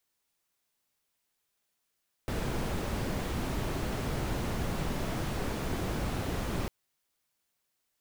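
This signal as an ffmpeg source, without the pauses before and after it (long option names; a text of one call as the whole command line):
ffmpeg -f lavfi -i "anoisesrc=color=brown:amplitude=0.117:duration=4.4:sample_rate=44100:seed=1" out.wav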